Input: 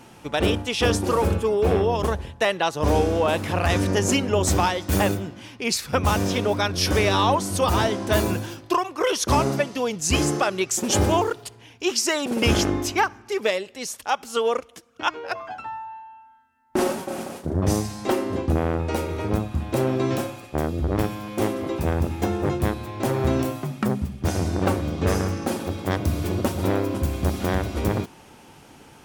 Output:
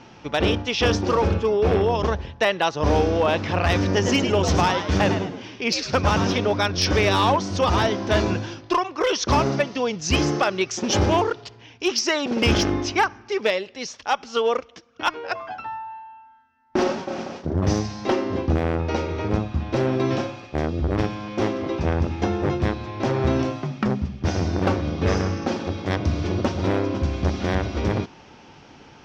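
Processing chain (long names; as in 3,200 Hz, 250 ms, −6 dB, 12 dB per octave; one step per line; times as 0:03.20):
elliptic low-pass filter 5,800 Hz, stop band 60 dB
0:03.94–0:06.37: echo with shifted repeats 104 ms, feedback 32%, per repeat +79 Hz, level −8 dB
asymmetric clip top −16 dBFS, bottom −11.5 dBFS
level +2 dB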